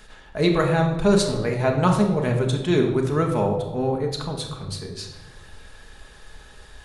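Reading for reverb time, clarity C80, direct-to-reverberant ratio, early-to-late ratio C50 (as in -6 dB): 1.1 s, 9.0 dB, 1.0 dB, 6.5 dB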